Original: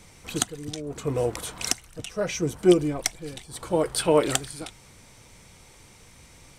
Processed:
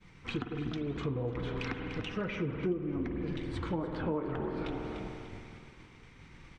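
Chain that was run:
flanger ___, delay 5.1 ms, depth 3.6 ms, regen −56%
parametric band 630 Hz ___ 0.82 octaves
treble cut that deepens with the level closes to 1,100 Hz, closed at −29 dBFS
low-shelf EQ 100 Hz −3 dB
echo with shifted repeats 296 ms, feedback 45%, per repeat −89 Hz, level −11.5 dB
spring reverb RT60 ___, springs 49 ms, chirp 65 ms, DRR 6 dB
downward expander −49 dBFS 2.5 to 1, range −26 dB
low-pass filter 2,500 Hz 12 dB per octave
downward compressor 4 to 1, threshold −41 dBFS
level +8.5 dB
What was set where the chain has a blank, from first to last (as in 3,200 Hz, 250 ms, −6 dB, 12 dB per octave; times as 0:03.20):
1.4 Hz, −12.5 dB, 2.6 s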